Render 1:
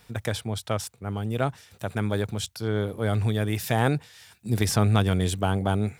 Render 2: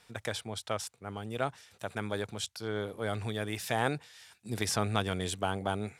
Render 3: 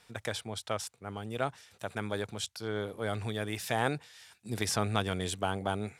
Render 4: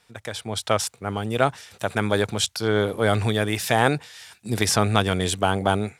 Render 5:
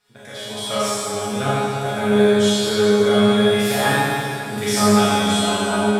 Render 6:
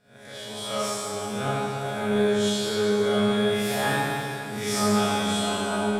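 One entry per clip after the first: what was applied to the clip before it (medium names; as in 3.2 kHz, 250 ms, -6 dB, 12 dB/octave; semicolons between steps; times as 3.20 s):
low-pass 11 kHz 12 dB/octave; bass shelf 260 Hz -11.5 dB; trim -3.5 dB
no audible change
level rider gain up to 14 dB
chord resonator C#3 fifth, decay 0.25 s; Schroeder reverb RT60 2.6 s, combs from 30 ms, DRR -8.5 dB; trim +6.5 dB
reverse spectral sustain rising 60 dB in 0.44 s; in parallel at -12 dB: saturation -16 dBFS, distortion -10 dB; on the sum: trim -9 dB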